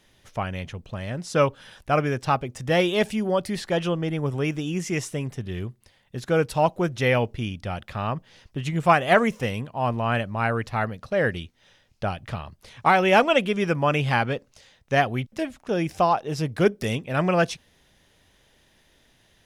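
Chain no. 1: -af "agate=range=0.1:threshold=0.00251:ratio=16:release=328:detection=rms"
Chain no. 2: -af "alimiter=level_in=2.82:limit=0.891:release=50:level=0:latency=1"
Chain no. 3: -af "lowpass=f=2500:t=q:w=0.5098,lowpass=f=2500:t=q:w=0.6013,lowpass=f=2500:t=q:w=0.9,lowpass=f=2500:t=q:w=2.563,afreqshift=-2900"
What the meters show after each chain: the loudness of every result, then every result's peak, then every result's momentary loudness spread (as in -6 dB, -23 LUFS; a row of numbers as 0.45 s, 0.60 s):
-24.5 LUFS, -16.0 LUFS, -22.0 LUFS; -5.5 dBFS, -1.0 dBFS, -3.5 dBFS; 14 LU, 12 LU, 12 LU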